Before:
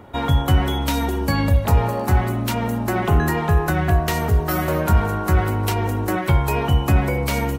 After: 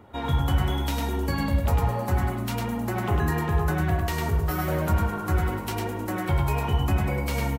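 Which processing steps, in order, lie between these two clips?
flange 0.99 Hz, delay 8.7 ms, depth 6.8 ms, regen -46%; on a send: echo 0.102 s -3.5 dB; on the sum: gain -4 dB

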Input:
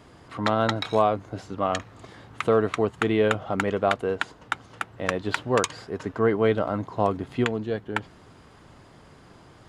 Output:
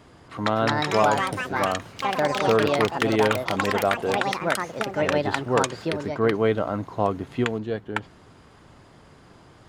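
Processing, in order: echoes that change speed 0.327 s, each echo +5 st, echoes 3

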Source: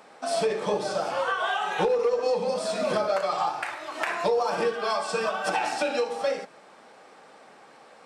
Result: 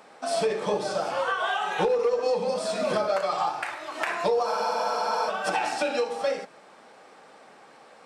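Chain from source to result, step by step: spectral freeze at 4.49, 0.79 s

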